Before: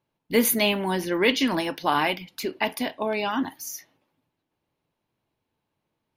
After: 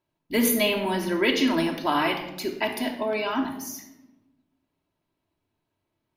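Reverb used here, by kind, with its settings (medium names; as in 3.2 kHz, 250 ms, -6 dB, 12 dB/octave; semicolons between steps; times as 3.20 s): simulated room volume 3500 m³, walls furnished, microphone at 2.9 m; trim -3 dB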